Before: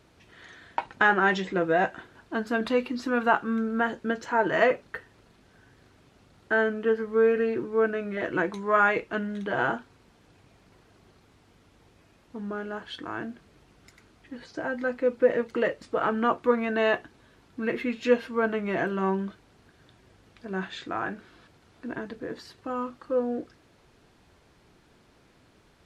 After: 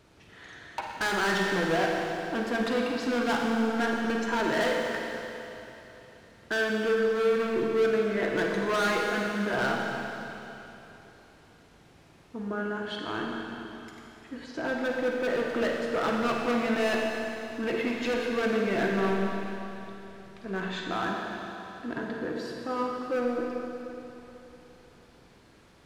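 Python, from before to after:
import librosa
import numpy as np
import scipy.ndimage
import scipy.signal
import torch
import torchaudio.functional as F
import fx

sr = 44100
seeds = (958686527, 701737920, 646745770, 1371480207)

y = np.clip(10.0 ** (26.0 / 20.0) * x, -1.0, 1.0) / 10.0 ** (26.0 / 20.0)
y = fx.rev_schroeder(y, sr, rt60_s=3.2, comb_ms=38, drr_db=-0.5)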